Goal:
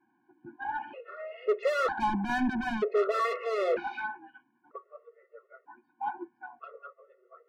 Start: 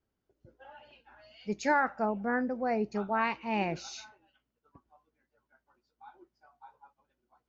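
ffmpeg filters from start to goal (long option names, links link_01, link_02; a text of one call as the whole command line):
ffmpeg -i in.wav -filter_complex "[0:a]highpass=frequency=160:width=0.5412,highpass=frequency=160:width=1.3066,equalizer=frequency=180:width_type=q:width=4:gain=-8,equalizer=frequency=480:width_type=q:width=4:gain=8,equalizer=frequency=690:width_type=q:width=4:gain=-6,lowpass=frequency=2000:width=0.5412,lowpass=frequency=2000:width=1.3066,asplit=2[link_01][link_02];[link_02]highpass=frequency=720:poles=1,volume=32dB,asoftclip=type=tanh:threshold=-15.5dB[link_03];[link_01][link_03]amix=inputs=2:normalize=0,lowpass=frequency=1200:poles=1,volume=-6dB,afftfilt=real='re*gt(sin(2*PI*0.53*pts/sr)*(1-2*mod(floor(b*sr/1024/360),2)),0)':imag='im*gt(sin(2*PI*0.53*pts/sr)*(1-2*mod(floor(b*sr/1024/360),2)),0)':win_size=1024:overlap=0.75" out.wav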